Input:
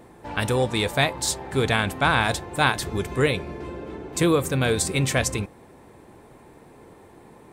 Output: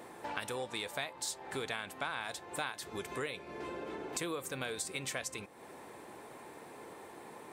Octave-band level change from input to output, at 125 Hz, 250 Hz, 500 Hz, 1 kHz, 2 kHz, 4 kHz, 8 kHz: -25.0 dB, -18.5 dB, -16.0 dB, -15.0 dB, -15.0 dB, -14.0 dB, -12.5 dB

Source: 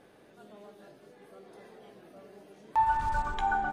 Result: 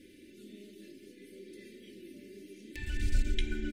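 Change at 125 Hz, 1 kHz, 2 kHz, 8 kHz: +5.5 dB, under -35 dB, -8.0 dB, no reading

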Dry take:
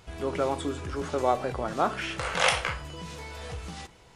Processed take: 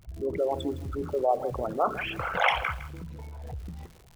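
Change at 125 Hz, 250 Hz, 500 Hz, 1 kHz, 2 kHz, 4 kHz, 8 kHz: 0.0 dB, -1.5 dB, +1.0 dB, 0.0 dB, -0.5 dB, -5.0 dB, under -15 dB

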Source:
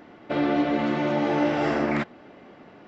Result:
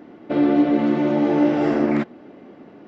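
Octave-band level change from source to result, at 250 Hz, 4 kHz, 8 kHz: +7.0 dB, -3.0 dB, no reading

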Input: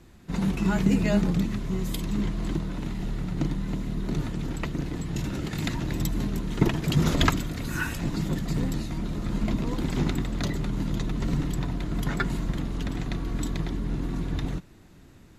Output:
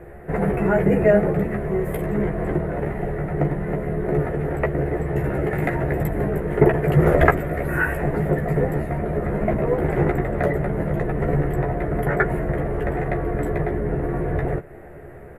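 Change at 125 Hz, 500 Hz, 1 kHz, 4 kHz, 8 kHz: +5.5 dB, +15.5 dB, +10.0 dB, under -10 dB, no reading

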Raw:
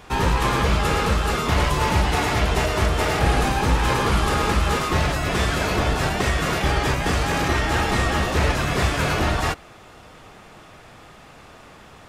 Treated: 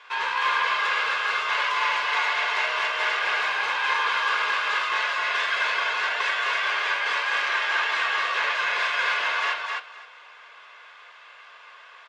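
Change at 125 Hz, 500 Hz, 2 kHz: under -40 dB, -12.5 dB, +3.5 dB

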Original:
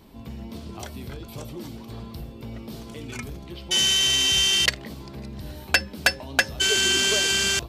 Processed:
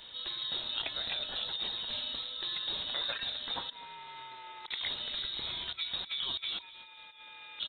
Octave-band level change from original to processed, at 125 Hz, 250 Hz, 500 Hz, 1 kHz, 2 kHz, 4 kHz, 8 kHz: -22.5 dB, -20.5 dB, -17.5 dB, -8.5 dB, -18.0 dB, -11.0 dB, under -40 dB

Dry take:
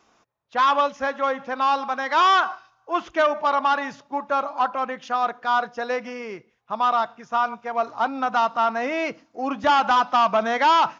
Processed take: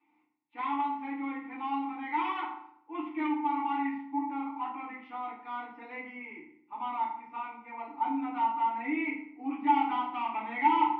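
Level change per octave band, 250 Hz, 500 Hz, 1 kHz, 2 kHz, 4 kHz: -1.0 dB, -22.5 dB, -9.5 dB, -12.5 dB, -19.0 dB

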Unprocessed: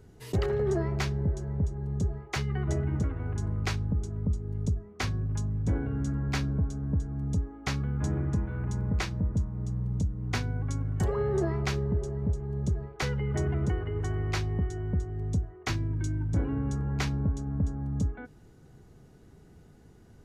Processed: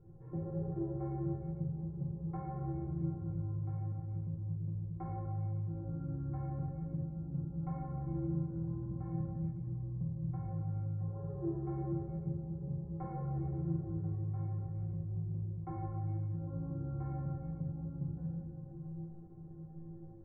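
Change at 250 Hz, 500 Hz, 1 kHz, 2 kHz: -6.5 dB, -12.5 dB, -8.0 dB, under -30 dB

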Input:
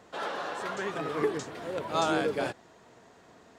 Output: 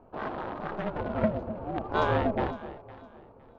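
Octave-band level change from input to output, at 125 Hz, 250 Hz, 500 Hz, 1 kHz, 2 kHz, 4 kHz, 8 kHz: +8.5 dB, +3.0 dB, +0.5 dB, +1.5 dB, -1.5 dB, -7.0 dB, under -20 dB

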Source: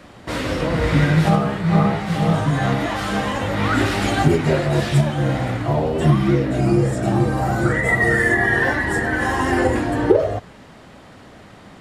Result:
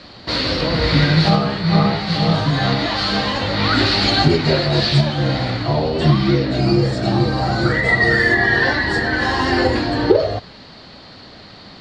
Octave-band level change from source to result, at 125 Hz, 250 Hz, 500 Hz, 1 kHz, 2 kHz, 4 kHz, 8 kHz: +1.0 dB, +1.0 dB, +1.0 dB, +1.5 dB, +2.5 dB, +12.0 dB, -3.5 dB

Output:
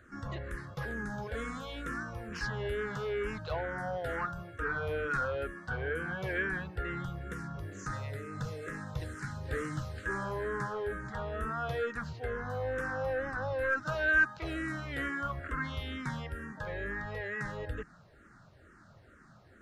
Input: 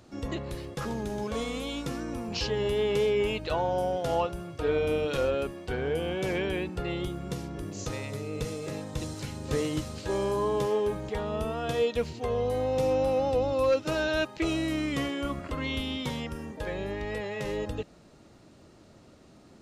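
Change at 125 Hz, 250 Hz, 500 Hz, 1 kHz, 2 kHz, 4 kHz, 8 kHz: -3.5 dB, -9.0 dB, -9.5 dB, -4.0 dB, +5.0 dB, -11.5 dB, -10.5 dB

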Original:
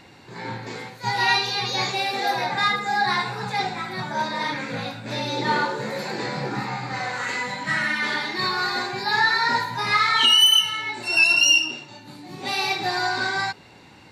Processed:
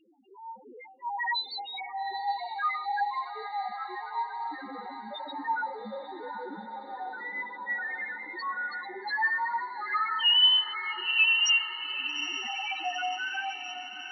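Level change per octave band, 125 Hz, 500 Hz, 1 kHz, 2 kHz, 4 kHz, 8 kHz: under -30 dB, -13.0 dB, -7.0 dB, -8.0 dB, -6.5 dB, -13.5 dB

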